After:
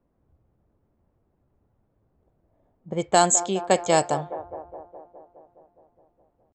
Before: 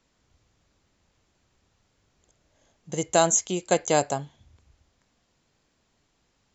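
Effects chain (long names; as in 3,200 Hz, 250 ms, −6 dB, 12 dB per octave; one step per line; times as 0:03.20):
pitch shifter +1 semitone
delay with a band-pass on its return 208 ms, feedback 69%, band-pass 660 Hz, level −12.5 dB
low-pass that shuts in the quiet parts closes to 710 Hz, open at −17.5 dBFS
level +2 dB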